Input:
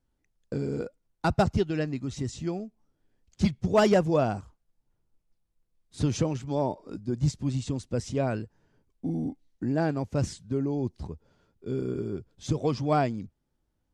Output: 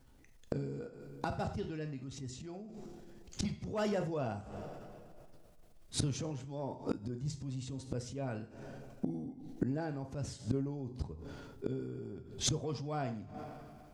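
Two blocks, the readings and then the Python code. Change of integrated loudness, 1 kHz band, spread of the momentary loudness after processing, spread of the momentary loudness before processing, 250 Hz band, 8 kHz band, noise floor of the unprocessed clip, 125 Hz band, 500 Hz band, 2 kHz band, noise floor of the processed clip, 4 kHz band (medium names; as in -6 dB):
-10.5 dB, -12.0 dB, 14 LU, 13 LU, -10.0 dB, 0.0 dB, -77 dBFS, -9.5 dB, -12.0 dB, -11.0 dB, -58 dBFS, -3.0 dB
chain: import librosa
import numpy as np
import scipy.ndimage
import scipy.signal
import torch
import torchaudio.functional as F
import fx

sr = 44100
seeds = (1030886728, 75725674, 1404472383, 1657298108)

y = fx.rev_double_slope(x, sr, seeds[0], early_s=0.42, late_s=2.1, knee_db=-26, drr_db=7.0)
y = fx.gate_flip(y, sr, shuts_db=-29.0, range_db=-26)
y = fx.transient(y, sr, attack_db=-5, sustain_db=5)
y = y * librosa.db_to_amplitude(13.0)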